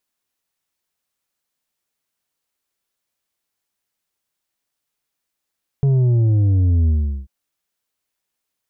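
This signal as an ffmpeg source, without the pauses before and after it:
ffmpeg -f lavfi -i "aevalsrc='0.224*clip((1.44-t)/0.39,0,1)*tanh(2*sin(2*PI*140*1.44/log(65/140)*(exp(log(65/140)*t/1.44)-1)))/tanh(2)':duration=1.44:sample_rate=44100" out.wav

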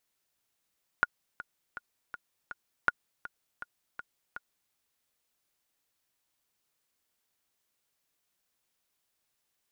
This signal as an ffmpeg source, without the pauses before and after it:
ffmpeg -f lavfi -i "aevalsrc='pow(10,(-10-16.5*gte(mod(t,5*60/162),60/162))/20)*sin(2*PI*1440*mod(t,60/162))*exp(-6.91*mod(t,60/162)/0.03)':duration=3.7:sample_rate=44100" out.wav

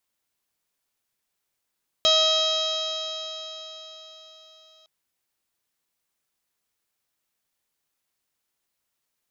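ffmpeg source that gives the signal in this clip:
ffmpeg -f lavfi -i "aevalsrc='0.0794*pow(10,-3*t/4.35)*sin(2*PI*633.35*t)+0.0398*pow(10,-3*t/4.35)*sin(2*PI*1268.78*t)+0.00841*pow(10,-3*t/4.35)*sin(2*PI*1908.38*t)+0.02*pow(10,-3*t/4.35)*sin(2*PI*2554.18*t)+0.0944*pow(10,-3*t/4.35)*sin(2*PI*3208.22*t)+0.112*pow(10,-3*t/4.35)*sin(2*PI*3872.47*t)+0.0224*pow(10,-3*t/4.35)*sin(2*PI*4548.85*t)+0.0501*pow(10,-3*t/4.35)*sin(2*PI*5239.22*t)+0.0178*pow(10,-3*t/4.35)*sin(2*PI*5945.39*t)+0.0188*pow(10,-3*t/4.35)*sin(2*PI*6669.07*t)':duration=2.81:sample_rate=44100" out.wav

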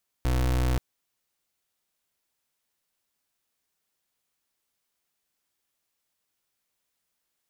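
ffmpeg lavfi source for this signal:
ffmpeg -f lavfi -i "aevalsrc='0.0631*(2*lt(mod(62.7*t,1),0.31)-1)':duration=0.53:sample_rate=44100" out.wav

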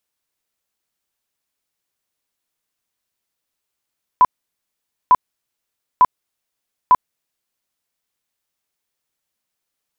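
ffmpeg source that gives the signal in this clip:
ffmpeg -f lavfi -i "aevalsrc='0.501*sin(2*PI*1000*mod(t,0.9))*lt(mod(t,0.9),38/1000)':duration=3.6:sample_rate=44100" out.wav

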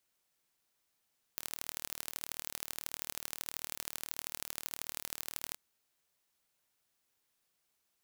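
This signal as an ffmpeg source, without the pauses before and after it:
ffmpeg -f lavfi -i "aevalsrc='0.335*eq(mod(n,1148),0)*(0.5+0.5*eq(mod(n,3444),0))':duration=4.17:sample_rate=44100" out.wav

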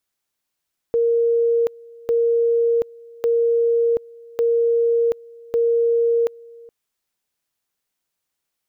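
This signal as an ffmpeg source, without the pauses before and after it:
ffmpeg -f lavfi -i "aevalsrc='pow(10,(-14.5-24.5*gte(mod(t,1.15),0.73))/20)*sin(2*PI*466*t)':duration=5.75:sample_rate=44100" out.wav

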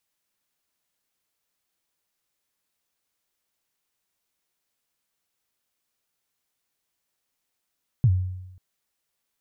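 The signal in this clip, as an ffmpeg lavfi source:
ffmpeg -f lavfi -i "aevalsrc='0.237*pow(10,-3*t/0.94)*sin(2*PI*(140*0.058/log(92/140)*(exp(log(92/140)*min(t,0.058)/0.058)-1)+92*max(t-0.058,0)))':duration=0.54:sample_rate=44100" out.wav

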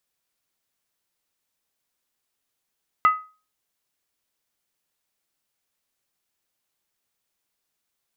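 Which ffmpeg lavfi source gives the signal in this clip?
ffmpeg -f lavfi -i "aevalsrc='0.316*pow(10,-3*t/0.34)*sin(2*PI*1260*t)+0.0794*pow(10,-3*t/0.269)*sin(2*PI*2008.4*t)+0.02*pow(10,-3*t/0.233)*sin(2*PI*2691.4*t)+0.00501*pow(10,-3*t/0.224)*sin(2*PI*2893*t)+0.00126*pow(10,-3*t/0.209)*sin(2*PI*3342.8*t)':duration=0.63:sample_rate=44100" out.wav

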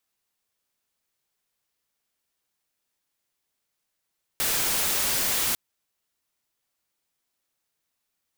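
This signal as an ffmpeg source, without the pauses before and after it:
ffmpeg -f lavfi -i "anoisesrc=color=white:amplitude=0.0974:duration=1.15:sample_rate=44100:seed=1" out.wav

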